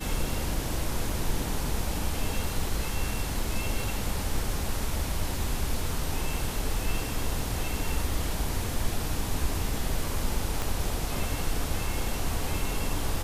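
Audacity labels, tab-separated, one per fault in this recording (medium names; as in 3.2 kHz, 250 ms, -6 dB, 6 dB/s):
1.100000	1.100000	dropout 2.8 ms
10.620000	10.620000	pop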